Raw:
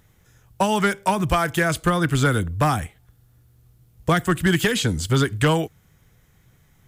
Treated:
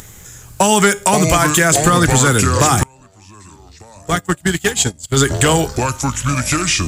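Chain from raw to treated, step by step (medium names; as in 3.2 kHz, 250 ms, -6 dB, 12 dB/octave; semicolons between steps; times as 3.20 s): compression 2.5:1, threshold -24 dBFS, peak gain reduction 7 dB; treble shelf 3.5 kHz +6 dB; hum notches 50/100/150 Hz; feedback comb 410 Hz, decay 0.39 s, harmonics all, mix 60%; ever faster or slower copies 325 ms, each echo -5 st, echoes 3, each echo -6 dB; 2.83–5.17 s: gate -29 dBFS, range -28 dB; peaking EQ 7.3 kHz +11 dB 0.38 oct; upward compressor, threshold -51 dBFS; loudness maximiser +20.5 dB; trim -1 dB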